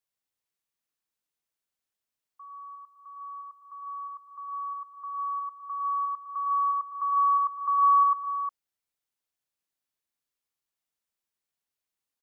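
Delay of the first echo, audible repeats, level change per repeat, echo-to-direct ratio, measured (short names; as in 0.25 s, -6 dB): 0.107 s, 3, no steady repeat, -6.5 dB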